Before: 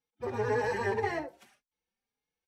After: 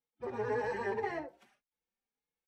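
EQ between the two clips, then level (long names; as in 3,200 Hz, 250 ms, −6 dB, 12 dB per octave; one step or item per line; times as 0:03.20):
parametric band 97 Hz −13 dB 0.35 octaves
high-shelf EQ 4,200 Hz −9.5 dB
−4.0 dB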